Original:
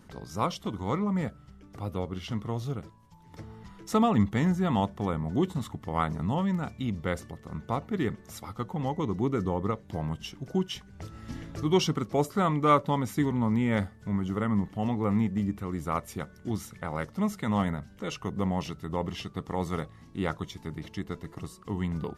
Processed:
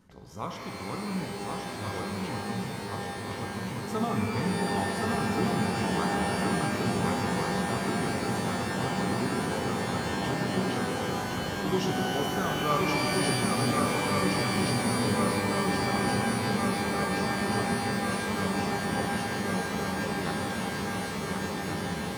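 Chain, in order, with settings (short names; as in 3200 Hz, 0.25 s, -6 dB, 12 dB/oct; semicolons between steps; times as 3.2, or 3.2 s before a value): swung echo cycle 1.428 s, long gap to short 3:1, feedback 73%, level -3 dB; shimmer reverb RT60 3.1 s, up +12 st, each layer -2 dB, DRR 1.5 dB; gain -8 dB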